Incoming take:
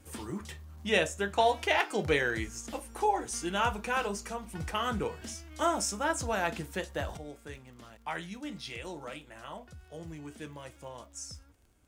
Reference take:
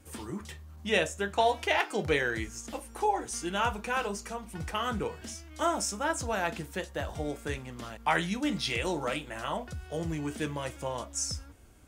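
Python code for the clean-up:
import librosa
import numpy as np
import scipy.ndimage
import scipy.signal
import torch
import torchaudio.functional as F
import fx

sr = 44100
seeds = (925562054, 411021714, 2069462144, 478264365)

y = fx.fix_declick_ar(x, sr, threshold=6.5)
y = fx.fix_level(y, sr, at_s=7.17, step_db=10.0)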